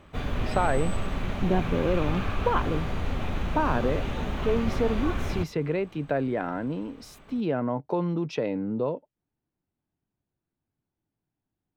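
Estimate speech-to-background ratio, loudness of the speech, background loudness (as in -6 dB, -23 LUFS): 3.0 dB, -29.0 LUFS, -32.0 LUFS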